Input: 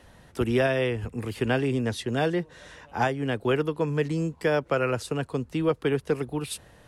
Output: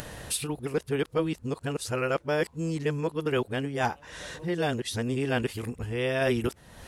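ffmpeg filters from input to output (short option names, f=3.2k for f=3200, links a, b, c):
-af "areverse,acompressor=mode=upward:threshold=-26dB:ratio=2.5,highshelf=f=4.2k:g=6.5,volume=-3dB"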